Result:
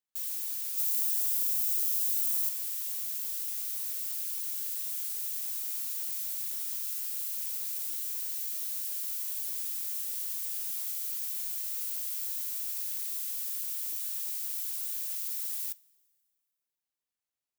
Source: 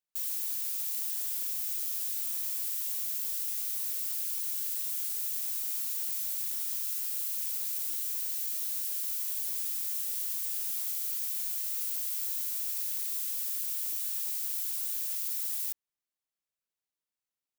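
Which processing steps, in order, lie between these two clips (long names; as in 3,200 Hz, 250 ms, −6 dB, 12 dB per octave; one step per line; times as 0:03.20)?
0:00.77–0:02.49: high-shelf EQ 5,800 Hz +6.5 dB
coupled-rooms reverb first 0.28 s, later 2 s, from −18 dB, DRR 17 dB
level −1.5 dB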